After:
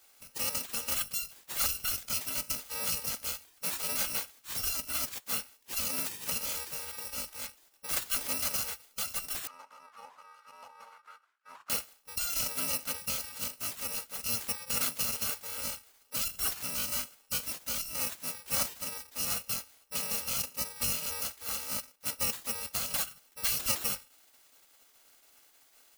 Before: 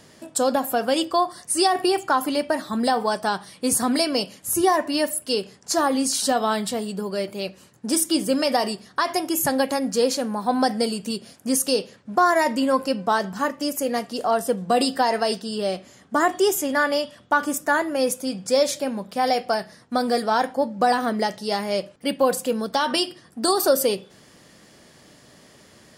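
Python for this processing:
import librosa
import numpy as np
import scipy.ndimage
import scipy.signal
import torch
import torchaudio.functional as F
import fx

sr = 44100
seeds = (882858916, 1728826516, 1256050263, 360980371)

y = fx.bit_reversed(x, sr, seeds[0], block=128)
y = fx.spec_gate(y, sr, threshold_db=-15, keep='weak')
y = fx.auto_wah(y, sr, base_hz=590.0, top_hz=1500.0, q=4.2, full_db=-17.0, direction='down', at=(9.47, 11.7))
y = y * librosa.db_to_amplitude(-4.5)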